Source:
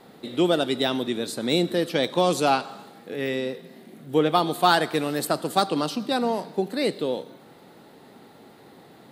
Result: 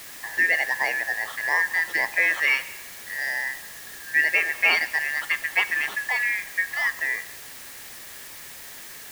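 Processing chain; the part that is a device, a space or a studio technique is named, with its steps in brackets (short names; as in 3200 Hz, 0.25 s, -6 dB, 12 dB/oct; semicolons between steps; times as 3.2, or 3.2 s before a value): split-band scrambled radio (four-band scrambler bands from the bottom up 3142; BPF 360–3100 Hz; white noise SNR 15 dB)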